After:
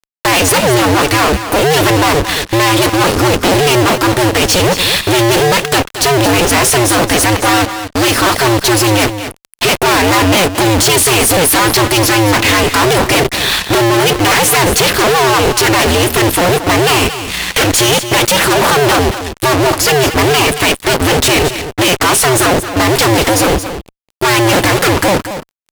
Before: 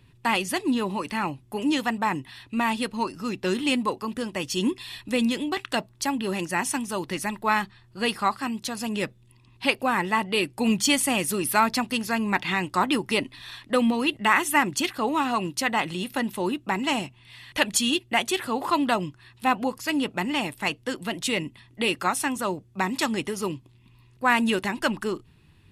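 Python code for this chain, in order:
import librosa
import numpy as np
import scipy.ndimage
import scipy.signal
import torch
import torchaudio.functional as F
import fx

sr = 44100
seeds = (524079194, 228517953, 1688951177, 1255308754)

y = fx.cycle_switch(x, sr, every=2, mode='inverted')
y = fx.fuzz(y, sr, gain_db=46.0, gate_db=-46.0)
y = y + 10.0 ** (-10.5 / 20.0) * np.pad(y, (int(225 * sr / 1000.0), 0))[:len(y)]
y = y * 10.0 ** (4.0 / 20.0)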